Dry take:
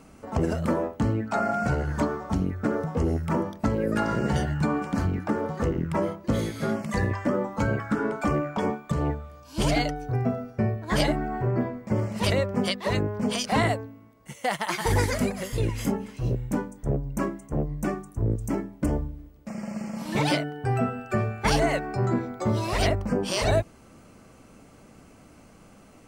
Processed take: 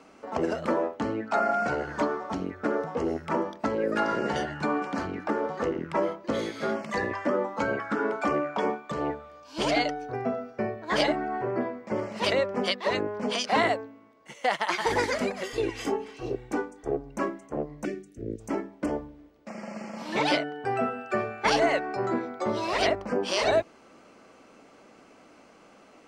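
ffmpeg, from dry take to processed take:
ffmpeg -i in.wav -filter_complex "[0:a]asettb=1/sr,asplit=3[link_01][link_02][link_03];[link_01]atrim=end=15.434[link_04];[link_02]atrim=start=15.43:end=17.16,asetpts=PTS-STARTPTS,afade=type=in:duration=0.004:curve=qsin,afade=type=out:start_time=1.726:duration=0.004:curve=qsin,aecho=1:1:2.6:0.61,atrim=end_sample=76293[link_05];[link_03]atrim=start=17.156[link_06];[link_04][link_05]acrossfade=duration=0.004:curve1=hsin:curve2=qsin[link_07];[link_07][link_06]acrossfade=duration=0.004:curve1=qsin:curve2=hsin,asettb=1/sr,asplit=3[link_08][link_09][link_10];[link_08]atrim=end=17.854[link_11];[link_09]atrim=start=17.85:end=18.4,asetpts=PTS-STARTPTS,afade=type=in:duration=0.004:curve=qsin,afade=type=out:start_time=0.546:duration=0.004:curve=qsin,asuperstop=centerf=960:order=4:qfactor=0.58[link_12];[link_10]atrim=start=18.396[link_13];[link_11][link_12]acrossfade=duration=0.004:curve1=hsin:curve2=qsin[link_14];[link_14][link_13]acrossfade=duration=0.004:curve1=qsin:curve2=hsin,acrossover=split=260 6400:gain=0.1 1 0.126[link_15][link_16][link_17];[link_15][link_16][link_17]amix=inputs=3:normalize=0,volume=1.5dB" out.wav

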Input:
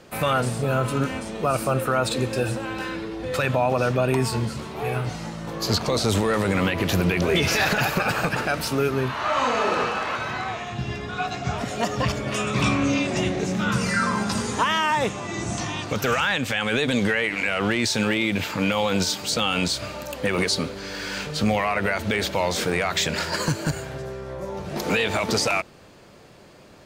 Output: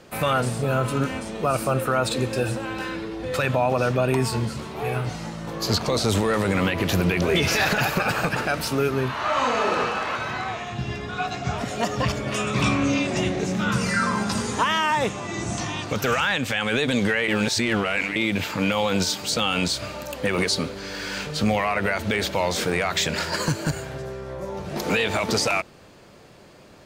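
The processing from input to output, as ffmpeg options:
ffmpeg -i in.wav -filter_complex "[0:a]asplit=3[link_01][link_02][link_03];[link_01]atrim=end=17.282[link_04];[link_02]atrim=start=17.278:end=18.162,asetpts=PTS-STARTPTS,areverse[link_05];[link_03]atrim=start=18.158[link_06];[link_04][link_05]acrossfade=duration=0.004:curve1=hsin:curve2=hsin[link_07];[link_07][link_06]acrossfade=duration=0.004:curve1=hsin:curve2=hsin" out.wav

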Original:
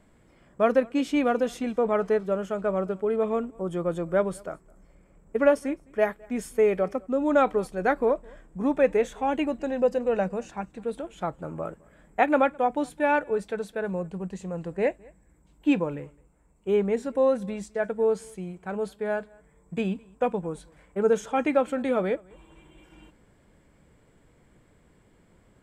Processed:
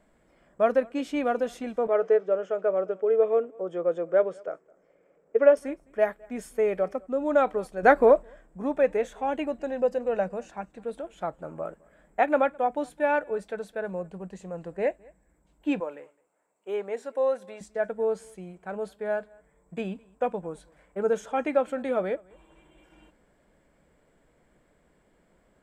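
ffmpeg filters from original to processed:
ffmpeg -i in.wav -filter_complex "[0:a]asettb=1/sr,asplit=3[link_01][link_02][link_03];[link_01]atrim=end=1.874[link_04];[link_02]atrim=start=1.87:end=5.57,asetpts=PTS-STARTPTS,afade=type=in:duration=0.004:curve=qsin,afade=type=out:start_time=3.696:duration=0.004:curve=qsin,highpass=210,equalizer=frequency=210:width_type=q:width=4:gain=-7,equalizer=frequency=470:width_type=q:width=4:gain=10,equalizer=frequency=960:width_type=q:width=4:gain=-4,equalizer=frequency=4200:width_type=q:width=4:gain=-10,lowpass=frequency=6200:width=0.5412,lowpass=frequency=6200:width=1.3066[link_05];[link_03]atrim=start=5.566[link_06];[link_04][link_05]acrossfade=duration=0.004:curve1=hsin:curve2=qsin[link_07];[link_07][link_06]acrossfade=duration=0.004:curve1=qsin:curve2=hsin,asettb=1/sr,asplit=3[link_08][link_09][link_10];[link_08]atrim=end=15.804[link_11];[link_09]atrim=start=15.8:end=17.61,asetpts=PTS-STARTPTS,afade=type=in:duration=0.004:curve=qsin,afade=type=out:start_time=1.806:duration=0.004:curve=qsin,highpass=440[link_12];[link_10]atrim=start=17.606[link_13];[link_11][link_12]acrossfade=duration=0.004:curve1=hsin:curve2=qsin[link_14];[link_14][link_13]acrossfade=duration=0.004:curve1=qsin:curve2=hsin,asplit=3[link_15][link_16][link_17];[link_15]atrim=end=7.832[link_18];[link_16]atrim=start=7.828:end=8.232,asetpts=PTS-STARTPTS,volume=8dB[link_19];[link_17]atrim=start=8.228[link_20];[link_18][link_19]acrossfade=duration=0.004:curve1=hsin:curve2=hsin[link_21];[link_21][link_20]acrossfade=duration=0.004:curve1=hsin:curve2=hsin,equalizer=frequency=100:width_type=o:width=0.67:gain=-11,equalizer=frequency=630:width_type=o:width=0.67:gain=6,equalizer=frequency=1600:width_type=o:width=0.67:gain=3,volume=-5dB" out.wav

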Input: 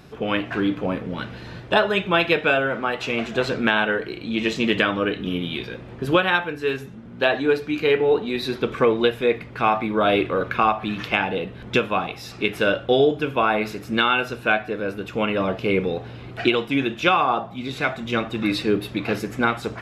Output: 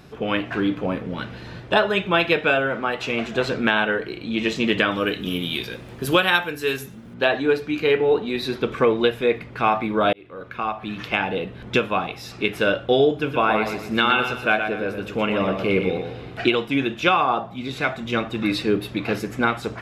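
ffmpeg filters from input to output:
ffmpeg -i in.wav -filter_complex "[0:a]asettb=1/sr,asplit=3[link_01][link_02][link_03];[link_01]atrim=end=4.914[link_04];[link_02]atrim=start=4.91:end=7.14,asetpts=PTS-STARTPTS,afade=type=in:duration=0.004:curve=qsin,afade=type=out:start_time=2.226:duration=0.004:curve=qsin,aemphasis=mode=production:type=75fm[link_05];[link_03]atrim=start=7.136[link_06];[link_04][link_05]acrossfade=duration=0.004:curve1=hsin:curve2=qsin[link_07];[link_07][link_06]acrossfade=duration=0.004:curve1=qsin:curve2=hsin,asettb=1/sr,asplit=3[link_08][link_09][link_10];[link_08]atrim=end=13.124[link_11];[link_09]atrim=start=13.12:end=16.44,asetpts=PTS-STARTPTS,afade=type=in:duration=0.004:curve=qsin,afade=type=out:start_time=3.316:duration=0.004:curve=qsin,aecho=1:1:119|238|357|476:0.447|0.165|0.0612|0.0226,atrim=end_sample=146412[link_12];[link_10]atrim=start=16.436[link_13];[link_11][link_12]acrossfade=duration=0.004:curve1=hsin:curve2=qsin[link_14];[link_14][link_13]acrossfade=duration=0.004:curve1=qsin:curve2=hsin,asplit=2[link_15][link_16];[link_15]atrim=end=10.13,asetpts=PTS-STARTPTS,afade=type=out:start_time=10.126:duration=0.004:curve=hsin[link_17];[link_16]atrim=start=10.13,asetpts=PTS-STARTPTS,afade=type=in:duration=1.19[link_18];[link_17][link_18]concat=n=2:v=0:a=1" out.wav

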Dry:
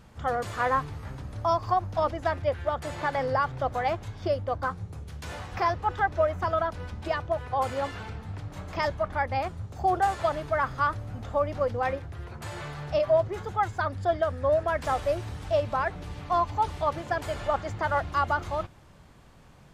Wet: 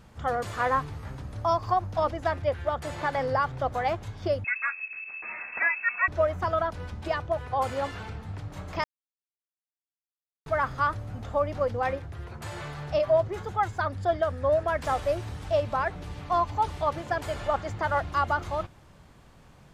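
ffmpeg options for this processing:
ffmpeg -i in.wav -filter_complex "[0:a]asettb=1/sr,asplit=3[link_01][link_02][link_03];[link_01]atrim=end=4.444[link_04];[link_02]atrim=start=4.44:end=6.08,asetpts=PTS-STARTPTS,afade=type=in:duration=0.004:curve=qsin,afade=type=out:start_time=1.636:duration=0.004:curve=qsin,lowpass=frequency=2300:width_type=q:width=0.5098,lowpass=frequency=2300:width_type=q:width=0.6013,lowpass=frequency=2300:width_type=q:width=0.9,lowpass=frequency=2300:width_type=q:width=2.563,afreqshift=-2700[link_05];[link_03]atrim=start=6.076[link_06];[link_04][link_05]acrossfade=duration=0.004:curve1=hsin:curve2=qsin[link_07];[link_07][link_06]acrossfade=duration=0.004:curve1=qsin:curve2=hsin,asplit=3[link_08][link_09][link_10];[link_08]atrim=end=8.84,asetpts=PTS-STARTPTS,afade=type=out:start_time=8.836:duration=0.004:curve=hsin[link_11];[link_09]atrim=start=8.84:end=10.46,asetpts=PTS-STARTPTS,volume=0[link_12];[link_10]atrim=start=10.46,asetpts=PTS-STARTPTS,afade=type=in:duration=0.004:curve=hsin[link_13];[link_11][link_12][link_13]concat=n=3:v=0:a=1" out.wav

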